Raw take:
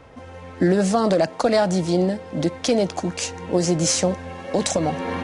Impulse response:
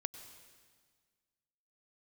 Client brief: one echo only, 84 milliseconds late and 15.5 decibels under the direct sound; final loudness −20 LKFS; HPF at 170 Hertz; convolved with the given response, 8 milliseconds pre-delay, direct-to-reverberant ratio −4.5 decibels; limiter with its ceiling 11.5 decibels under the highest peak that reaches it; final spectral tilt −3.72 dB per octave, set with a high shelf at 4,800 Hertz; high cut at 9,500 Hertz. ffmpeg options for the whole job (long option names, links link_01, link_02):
-filter_complex "[0:a]highpass=170,lowpass=9500,highshelf=frequency=4800:gain=7,alimiter=limit=-16.5dB:level=0:latency=1,aecho=1:1:84:0.168,asplit=2[link_01][link_02];[1:a]atrim=start_sample=2205,adelay=8[link_03];[link_02][link_03]afir=irnorm=-1:irlink=0,volume=6dB[link_04];[link_01][link_04]amix=inputs=2:normalize=0,volume=0.5dB"